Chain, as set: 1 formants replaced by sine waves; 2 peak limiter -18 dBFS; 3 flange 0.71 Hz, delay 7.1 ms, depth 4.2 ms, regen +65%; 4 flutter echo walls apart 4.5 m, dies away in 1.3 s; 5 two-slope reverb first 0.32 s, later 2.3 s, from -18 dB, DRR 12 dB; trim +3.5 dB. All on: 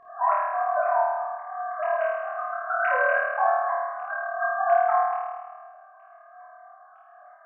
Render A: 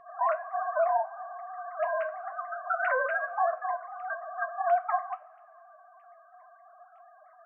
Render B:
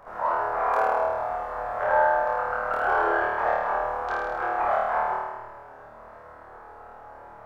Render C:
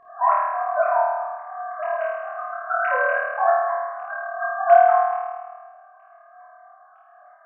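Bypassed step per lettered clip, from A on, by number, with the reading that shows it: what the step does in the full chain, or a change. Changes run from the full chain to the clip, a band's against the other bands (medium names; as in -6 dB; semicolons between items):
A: 4, echo-to-direct 5.5 dB to -12.0 dB; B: 1, momentary loudness spread change +12 LU; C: 2, crest factor change +3.5 dB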